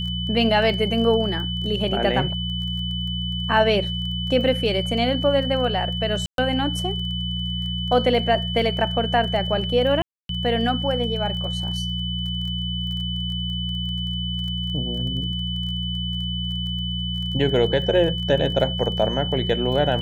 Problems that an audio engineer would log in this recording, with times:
crackle 20/s -32 dBFS
hum 60 Hz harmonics 3 -28 dBFS
tone 3000 Hz -28 dBFS
6.26–6.38 gap 0.122 s
10.02–10.29 gap 0.272 s

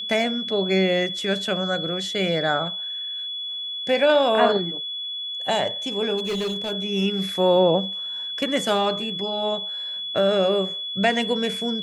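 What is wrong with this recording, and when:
tone 3400 Hz -28 dBFS
6.17–6.72 clipped -22.5 dBFS

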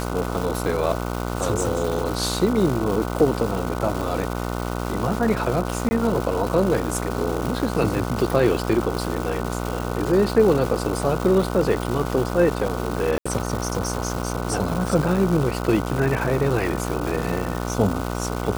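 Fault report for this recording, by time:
buzz 60 Hz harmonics 25 -27 dBFS
crackle 590/s -26 dBFS
5.89–5.91 gap 20 ms
13.18–13.26 gap 75 ms

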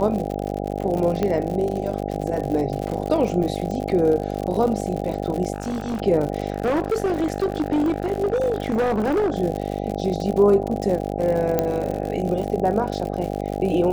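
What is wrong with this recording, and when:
buzz 50 Hz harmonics 16 -27 dBFS
crackle 82/s -27 dBFS
1.23 pop -11 dBFS
5.54–6.02 clipped -22 dBFS
6.5–9.36 clipped -17 dBFS
11.59 pop -7 dBFS

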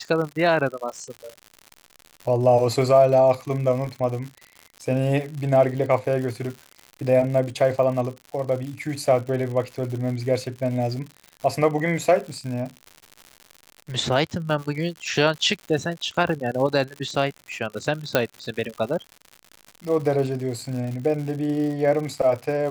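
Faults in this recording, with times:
crackle 130/s -31 dBFS
18.15 pop -4 dBFS

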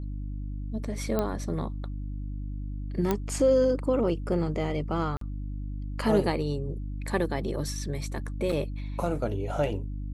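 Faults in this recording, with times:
hum 50 Hz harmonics 6 -34 dBFS
1.19 pop -14 dBFS
3.11 pop -12 dBFS
5.17–5.21 gap 43 ms
8.52 gap 4.1 ms

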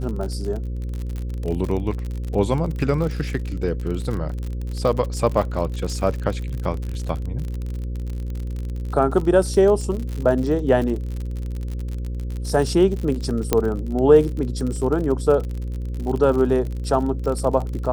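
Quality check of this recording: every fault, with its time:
buzz 60 Hz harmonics 9 -27 dBFS
crackle 51/s -27 dBFS
13.53 pop -3 dBFS

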